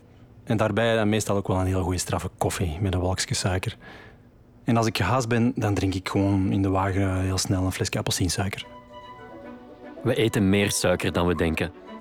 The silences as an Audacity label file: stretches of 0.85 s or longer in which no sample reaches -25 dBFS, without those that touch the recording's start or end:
3.700000	4.680000	silence
8.610000	10.050000	silence